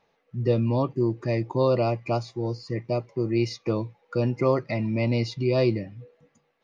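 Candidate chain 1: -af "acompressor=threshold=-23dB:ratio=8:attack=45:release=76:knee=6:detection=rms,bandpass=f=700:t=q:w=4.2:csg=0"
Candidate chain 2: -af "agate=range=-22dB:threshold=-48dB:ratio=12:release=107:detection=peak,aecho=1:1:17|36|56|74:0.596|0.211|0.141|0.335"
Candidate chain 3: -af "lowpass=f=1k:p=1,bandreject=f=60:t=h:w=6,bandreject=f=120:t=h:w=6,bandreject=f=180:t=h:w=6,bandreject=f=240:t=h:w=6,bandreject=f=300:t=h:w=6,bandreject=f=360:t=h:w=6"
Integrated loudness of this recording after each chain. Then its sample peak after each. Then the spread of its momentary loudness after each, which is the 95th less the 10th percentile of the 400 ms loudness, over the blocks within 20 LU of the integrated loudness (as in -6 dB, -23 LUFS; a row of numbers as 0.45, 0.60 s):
-39.0, -23.5, -27.5 LUFS; -22.0, -9.0, -11.0 dBFS; 12, 8, 8 LU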